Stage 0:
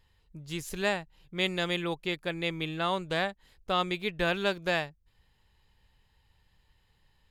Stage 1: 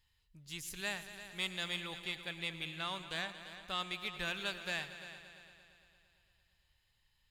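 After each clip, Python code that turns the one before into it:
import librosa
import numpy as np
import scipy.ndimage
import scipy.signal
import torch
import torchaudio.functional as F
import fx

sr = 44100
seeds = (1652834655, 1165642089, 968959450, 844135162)

y = fx.tone_stack(x, sr, knobs='5-5-5')
y = 10.0 ** (-29.0 / 20.0) * np.tanh(y / 10.0 ** (-29.0 / 20.0))
y = fx.echo_heads(y, sr, ms=114, heads='all three', feedback_pct=55, wet_db=-16)
y = y * librosa.db_to_amplitude(3.5)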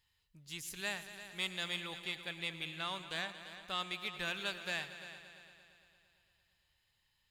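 y = fx.low_shelf(x, sr, hz=67.0, db=-11.0)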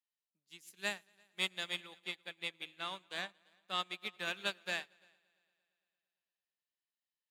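y = scipy.signal.sosfilt(scipy.signal.cheby1(4, 1.0, 190.0, 'highpass', fs=sr, output='sos'), x)
y = fx.upward_expand(y, sr, threshold_db=-53.0, expansion=2.5)
y = y * librosa.db_to_amplitude(5.0)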